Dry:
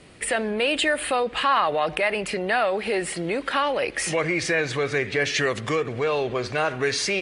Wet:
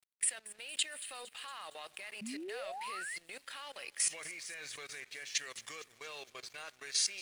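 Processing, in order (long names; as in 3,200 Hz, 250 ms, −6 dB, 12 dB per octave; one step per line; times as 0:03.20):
first-order pre-emphasis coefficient 0.97
output level in coarse steps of 15 dB
feedback echo with a high-pass in the loop 230 ms, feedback 70%, high-pass 1,100 Hz, level −16 dB
dead-zone distortion −59 dBFS
sound drawn into the spectrogram rise, 0:02.21–0:03.18, 200–2,200 Hz −43 dBFS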